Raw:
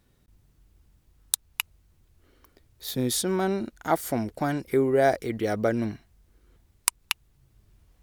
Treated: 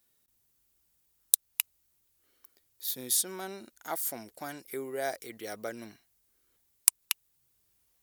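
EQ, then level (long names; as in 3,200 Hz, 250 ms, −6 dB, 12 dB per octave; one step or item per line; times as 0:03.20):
RIAA equalisation recording
−11.0 dB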